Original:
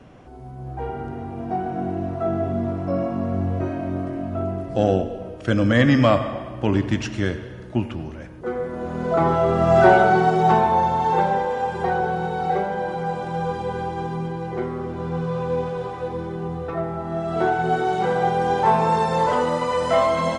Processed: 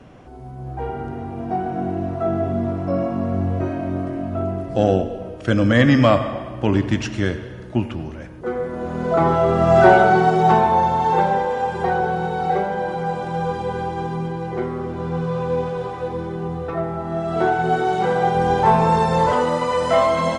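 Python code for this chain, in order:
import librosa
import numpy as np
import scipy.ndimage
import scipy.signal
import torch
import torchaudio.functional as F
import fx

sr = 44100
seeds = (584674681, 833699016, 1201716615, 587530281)

y = fx.low_shelf(x, sr, hz=110.0, db=11.5, at=(18.35, 19.32))
y = F.gain(torch.from_numpy(y), 2.0).numpy()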